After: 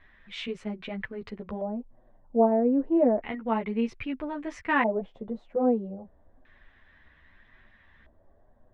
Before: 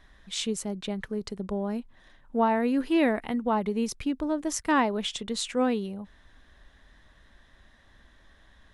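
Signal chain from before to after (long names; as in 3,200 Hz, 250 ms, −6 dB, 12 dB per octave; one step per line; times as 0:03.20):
multi-voice chorus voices 2, 0.99 Hz, delay 11 ms, depth 3 ms
auto-filter low-pass square 0.31 Hz 630–2,300 Hz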